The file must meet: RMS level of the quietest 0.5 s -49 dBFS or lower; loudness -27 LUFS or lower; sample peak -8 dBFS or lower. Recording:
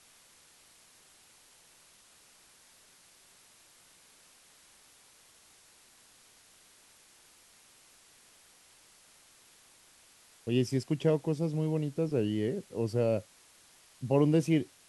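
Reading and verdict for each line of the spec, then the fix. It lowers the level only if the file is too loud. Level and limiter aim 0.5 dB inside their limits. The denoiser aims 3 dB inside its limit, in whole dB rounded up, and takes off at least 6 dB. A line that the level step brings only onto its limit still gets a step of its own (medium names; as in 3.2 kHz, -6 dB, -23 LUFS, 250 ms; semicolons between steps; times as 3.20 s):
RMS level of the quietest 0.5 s -61 dBFS: pass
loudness -30.5 LUFS: pass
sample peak -13.5 dBFS: pass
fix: none needed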